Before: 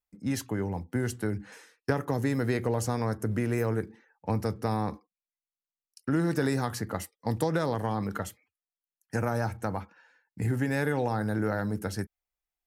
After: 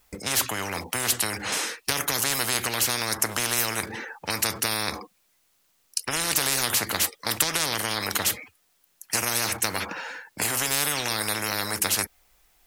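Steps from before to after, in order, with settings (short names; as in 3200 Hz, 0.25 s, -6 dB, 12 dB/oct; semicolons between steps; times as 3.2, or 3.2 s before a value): spectral compressor 10:1; gain +9 dB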